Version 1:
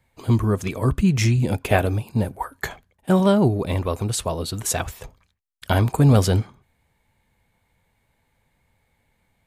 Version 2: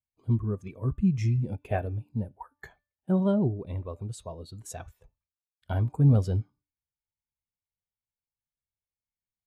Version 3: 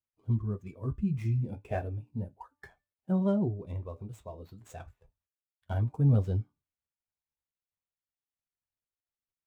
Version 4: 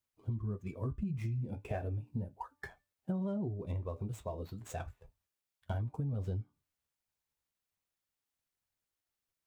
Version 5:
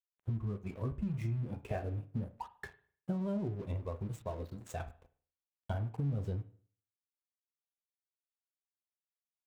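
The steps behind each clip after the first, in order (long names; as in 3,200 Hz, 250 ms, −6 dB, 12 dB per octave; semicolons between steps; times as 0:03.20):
hum removal 294 Hz, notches 22; every bin expanded away from the loudest bin 1.5 to 1; level −8.5 dB
running median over 9 samples; flanger 0.34 Hz, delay 8.6 ms, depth 6.7 ms, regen −44%
brickwall limiter −24.5 dBFS, peak gain reduction 8.5 dB; downward compressor 6 to 1, threshold −39 dBFS, peak gain reduction 11 dB; level +5 dB
dead-zone distortion −55 dBFS; convolution reverb, pre-delay 35 ms, DRR 13 dB; level +1 dB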